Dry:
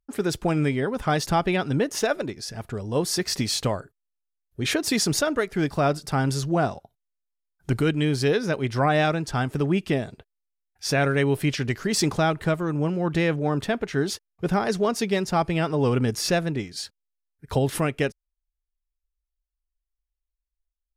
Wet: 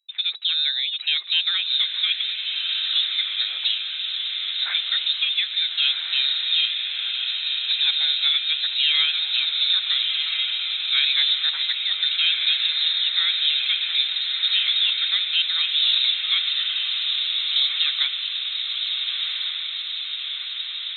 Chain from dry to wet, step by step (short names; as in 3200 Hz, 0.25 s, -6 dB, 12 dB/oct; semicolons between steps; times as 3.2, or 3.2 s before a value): inverted band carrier 3900 Hz; Chebyshev high-pass 1900 Hz, order 2; diffused feedback echo 1.374 s, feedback 69%, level -3.5 dB